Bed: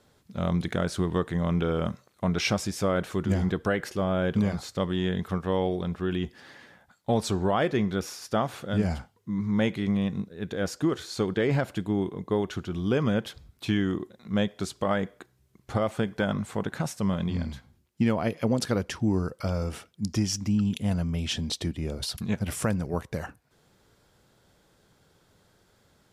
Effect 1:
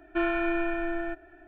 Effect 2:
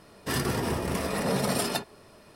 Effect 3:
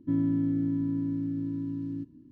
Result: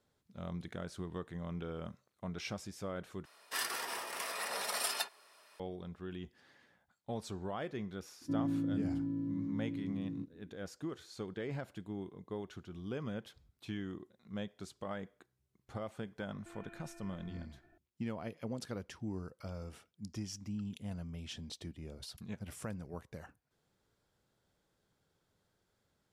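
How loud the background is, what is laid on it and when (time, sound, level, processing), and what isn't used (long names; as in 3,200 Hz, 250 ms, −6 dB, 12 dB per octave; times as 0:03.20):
bed −15.5 dB
0:03.25: overwrite with 2 −4 dB + high-pass filter 1,000 Hz
0:08.21: mix in 3 −8.5 dB + parametric band 520 Hz +7.5 dB
0:16.31: mix in 1 −14.5 dB + downward compressor 4 to 1, threshold −40 dBFS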